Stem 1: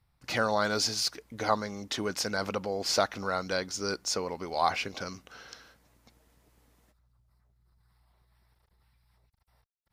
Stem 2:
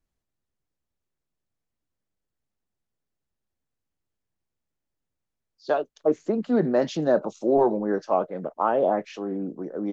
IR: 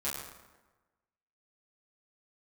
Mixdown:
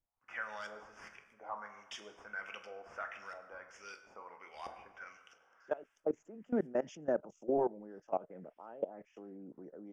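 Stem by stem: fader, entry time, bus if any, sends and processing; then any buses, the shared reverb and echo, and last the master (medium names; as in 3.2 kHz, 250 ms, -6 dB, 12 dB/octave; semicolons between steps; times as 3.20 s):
-2.0 dB, 0.00 s, send -7.5 dB, differentiator; saturation -35 dBFS, distortion -8 dB; LFO low-pass saw up 1.5 Hz 530–4500 Hz
-9.5 dB, 0.00 s, no send, level held to a coarse grid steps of 20 dB; peaking EQ 1.1 kHz -6 dB 0.24 oct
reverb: on, RT60 1.2 s, pre-delay 7 ms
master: Butterworth band-stop 4.1 kHz, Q 1.7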